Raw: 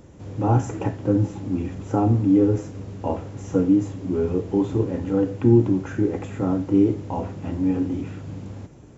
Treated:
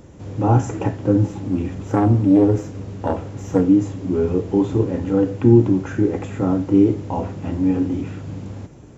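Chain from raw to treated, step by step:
0:01.24–0:03.62: phase distortion by the signal itself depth 0.19 ms
level +3.5 dB

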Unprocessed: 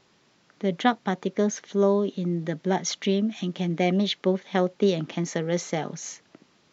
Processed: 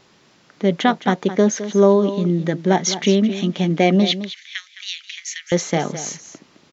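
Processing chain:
0:04.11–0:05.52: Butterworth high-pass 1,900 Hz 36 dB per octave
single-tap delay 213 ms −12.5 dB
boost into a limiter +9 dB
level −1 dB

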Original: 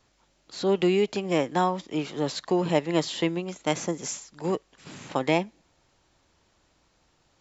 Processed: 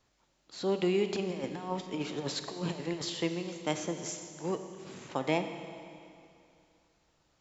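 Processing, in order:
0:01.09–0:03.10: compressor whose output falls as the input rises −28 dBFS, ratio −0.5
four-comb reverb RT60 2.5 s, combs from 26 ms, DRR 7.5 dB
level −6.5 dB

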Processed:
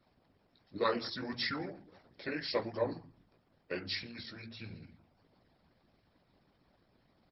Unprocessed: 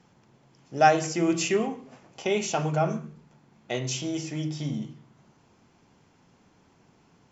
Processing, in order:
multi-voice chorus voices 2, 1.4 Hz, delay 15 ms, depth 3 ms
pitch shifter −5.5 semitones
harmonic and percussive parts rebalanced harmonic −18 dB

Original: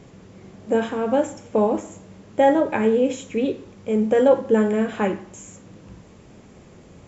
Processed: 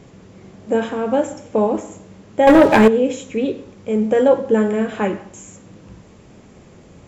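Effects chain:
on a send at −19 dB: convolution reverb RT60 0.50 s, pre-delay 70 ms
0:02.47–0:02.88: on the sum: leveller curve on the samples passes 3
level +2 dB

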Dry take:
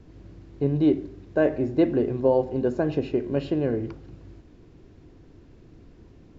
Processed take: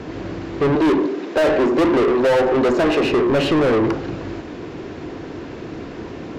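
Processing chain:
0:00.75–0:03.04: high-pass filter 240 Hz 24 dB per octave
mid-hump overdrive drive 36 dB, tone 2,100 Hz, clips at −9 dBFS

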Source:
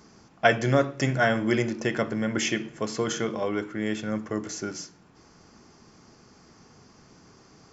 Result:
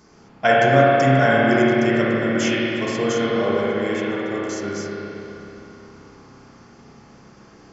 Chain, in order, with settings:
spring reverb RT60 3.4 s, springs 30/53 ms, chirp 30 ms, DRR −6.5 dB

